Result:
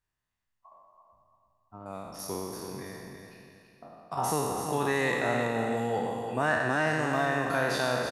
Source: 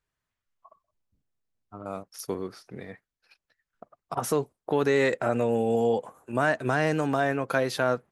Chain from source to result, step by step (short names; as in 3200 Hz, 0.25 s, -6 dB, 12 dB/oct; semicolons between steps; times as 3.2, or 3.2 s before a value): spectral trails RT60 1.74 s; comb 1.1 ms, depth 31%; feedback echo 0.332 s, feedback 36%, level -7 dB; gain -5.5 dB